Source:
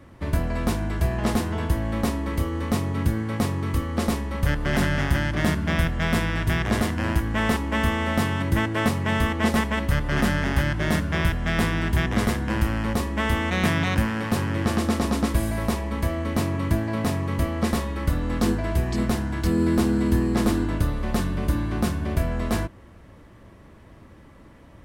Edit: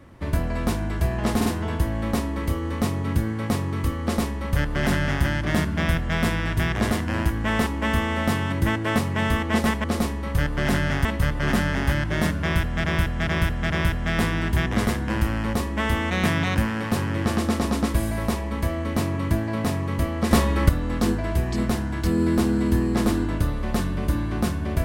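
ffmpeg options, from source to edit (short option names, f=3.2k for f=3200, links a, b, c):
-filter_complex "[0:a]asplit=10[a][b][c][d][e][f][g][h][i][j];[a]atrim=end=1.412[k];[b]atrim=start=1.358:end=1.412[l];[c]atrim=start=1.358:end=9.742[m];[d]atrim=start=3.918:end=5.132[n];[e]atrim=start=9.738:end=11.532[o];[f]atrim=start=11.098:end=11.532[p];[g]atrim=start=11.098:end=11.532[q];[h]atrim=start=11.098:end=17.712[r];[i]atrim=start=17.708:end=18.092,asetpts=PTS-STARTPTS,volume=7dB[s];[j]atrim=start=18.088[t];[k][l]acrossfade=d=0.004:c1=hsin:c2=hsin[u];[u][m]acrossfade=d=0.004:c1=hsin:c2=hsin[v];[v][n]acrossfade=d=0.004:c1=hsin:c2=hsin[w];[w][o]acrossfade=d=0.004:c1=hsin:c2=hsin[x];[x][p]acrossfade=d=0.004:c1=hsin:c2=hsin[y];[y][q]acrossfade=d=0.004:c1=hsin:c2=hsin[z];[z][r]acrossfade=d=0.004:c1=hsin:c2=hsin[aa];[aa][s]acrossfade=d=0.004:c1=hsin:c2=hsin[ab];[ab][t]acrossfade=d=0.004:c1=hsin:c2=hsin"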